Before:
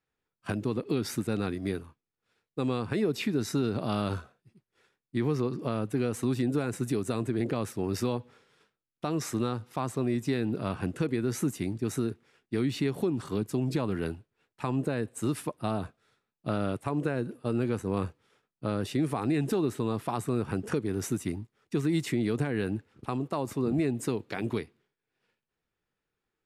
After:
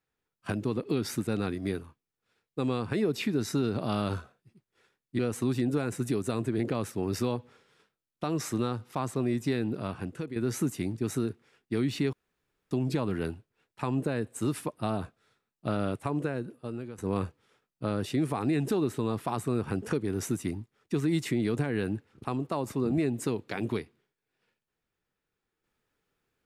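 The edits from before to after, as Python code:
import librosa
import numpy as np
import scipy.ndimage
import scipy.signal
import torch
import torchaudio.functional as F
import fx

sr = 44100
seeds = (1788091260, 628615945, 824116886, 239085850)

y = fx.edit(x, sr, fx.cut(start_s=5.19, length_s=0.81),
    fx.fade_out_to(start_s=10.36, length_s=0.81, floor_db=-9.5),
    fx.room_tone_fill(start_s=12.94, length_s=0.58),
    fx.fade_out_to(start_s=16.88, length_s=0.91, floor_db=-15.5), tone=tone)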